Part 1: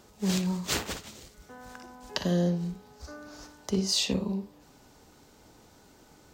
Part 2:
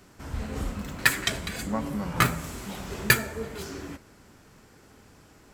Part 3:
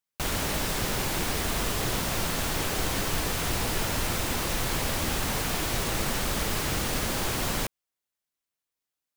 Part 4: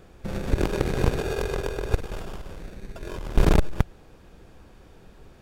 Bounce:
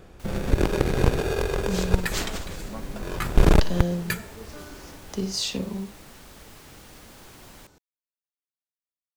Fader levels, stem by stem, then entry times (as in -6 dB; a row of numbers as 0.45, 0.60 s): -1.0, -9.5, -19.0, +2.0 dB; 1.45, 1.00, 0.00, 0.00 s